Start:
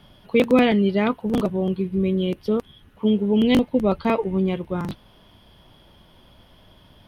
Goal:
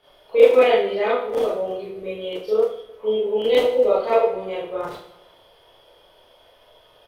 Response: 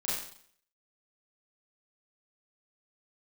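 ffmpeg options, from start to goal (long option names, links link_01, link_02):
-filter_complex "[0:a]lowshelf=frequency=330:width_type=q:width=3:gain=-12,aecho=1:1:153|306|459|612:0.112|0.0595|0.0315|0.0167[link_01];[1:a]atrim=start_sample=2205,asetrate=52920,aresample=44100[link_02];[link_01][link_02]afir=irnorm=-1:irlink=0,volume=-4dB"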